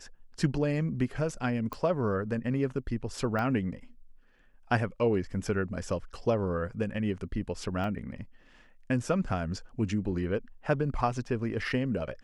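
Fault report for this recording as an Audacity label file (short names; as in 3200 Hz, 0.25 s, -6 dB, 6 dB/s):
1.730000	1.730000	pop -22 dBFS
3.390000	3.390000	pop -21 dBFS
7.840000	7.840000	gap 2.1 ms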